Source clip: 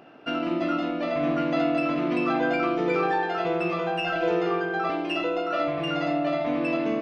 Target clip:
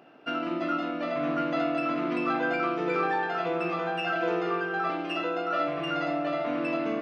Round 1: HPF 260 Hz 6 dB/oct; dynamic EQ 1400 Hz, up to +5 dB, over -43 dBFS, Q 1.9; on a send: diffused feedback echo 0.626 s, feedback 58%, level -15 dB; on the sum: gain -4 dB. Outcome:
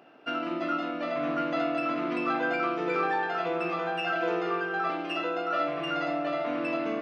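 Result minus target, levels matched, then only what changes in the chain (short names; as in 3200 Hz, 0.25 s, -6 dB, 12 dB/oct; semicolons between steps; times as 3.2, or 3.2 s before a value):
125 Hz band -3.0 dB
change: HPF 120 Hz 6 dB/oct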